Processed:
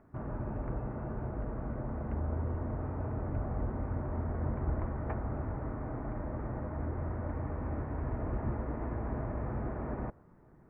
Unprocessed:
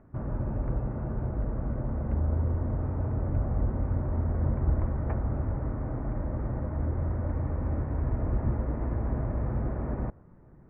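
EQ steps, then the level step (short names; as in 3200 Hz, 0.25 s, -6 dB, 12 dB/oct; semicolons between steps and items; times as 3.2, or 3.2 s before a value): low shelf 230 Hz -8.5 dB; notch 540 Hz, Q 12; 0.0 dB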